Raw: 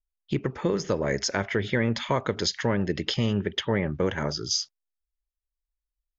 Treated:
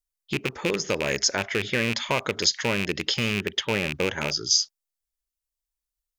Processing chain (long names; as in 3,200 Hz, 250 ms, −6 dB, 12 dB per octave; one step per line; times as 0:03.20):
loose part that buzzes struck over −27 dBFS, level −16 dBFS
bass and treble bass −5 dB, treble +8 dB